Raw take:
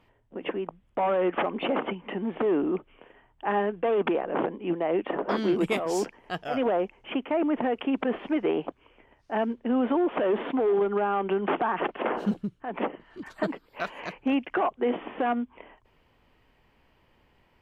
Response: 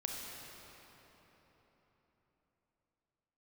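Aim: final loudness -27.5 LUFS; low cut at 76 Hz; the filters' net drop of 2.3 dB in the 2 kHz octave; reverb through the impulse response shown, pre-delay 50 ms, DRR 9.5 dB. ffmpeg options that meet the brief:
-filter_complex "[0:a]highpass=76,equalizer=f=2000:t=o:g=-3,asplit=2[s0][s1];[1:a]atrim=start_sample=2205,adelay=50[s2];[s1][s2]afir=irnorm=-1:irlink=0,volume=0.282[s3];[s0][s3]amix=inputs=2:normalize=0,volume=1.06"

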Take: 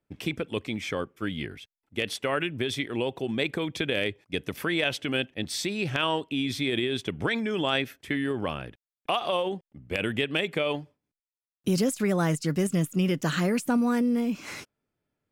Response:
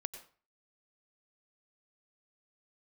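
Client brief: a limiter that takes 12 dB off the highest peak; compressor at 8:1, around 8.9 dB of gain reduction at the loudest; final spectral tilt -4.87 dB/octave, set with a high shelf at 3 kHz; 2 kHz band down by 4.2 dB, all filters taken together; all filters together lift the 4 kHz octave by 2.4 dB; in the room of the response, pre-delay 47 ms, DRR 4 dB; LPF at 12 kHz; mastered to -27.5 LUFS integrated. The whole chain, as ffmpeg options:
-filter_complex "[0:a]lowpass=12000,equalizer=f=2000:t=o:g=-7,highshelf=f=3000:g=-4,equalizer=f=4000:t=o:g=9,acompressor=threshold=0.0316:ratio=8,alimiter=level_in=1.78:limit=0.0631:level=0:latency=1,volume=0.562,asplit=2[s0][s1];[1:a]atrim=start_sample=2205,adelay=47[s2];[s1][s2]afir=irnorm=-1:irlink=0,volume=0.75[s3];[s0][s3]amix=inputs=2:normalize=0,volume=3.16"

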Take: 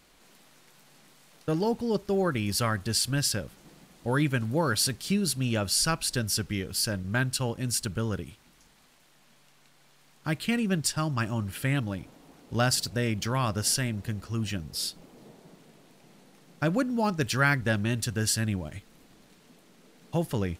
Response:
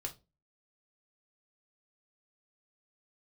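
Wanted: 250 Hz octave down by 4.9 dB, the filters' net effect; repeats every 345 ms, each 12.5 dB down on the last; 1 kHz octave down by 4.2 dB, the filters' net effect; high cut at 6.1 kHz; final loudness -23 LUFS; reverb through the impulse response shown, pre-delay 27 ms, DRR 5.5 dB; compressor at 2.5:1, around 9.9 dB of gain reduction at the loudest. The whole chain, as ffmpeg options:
-filter_complex "[0:a]lowpass=6100,equalizer=f=250:t=o:g=-6.5,equalizer=f=1000:t=o:g=-5.5,acompressor=threshold=0.0158:ratio=2.5,aecho=1:1:345|690|1035:0.237|0.0569|0.0137,asplit=2[s0][s1];[1:a]atrim=start_sample=2205,adelay=27[s2];[s1][s2]afir=irnorm=-1:irlink=0,volume=0.596[s3];[s0][s3]amix=inputs=2:normalize=0,volume=4.47"

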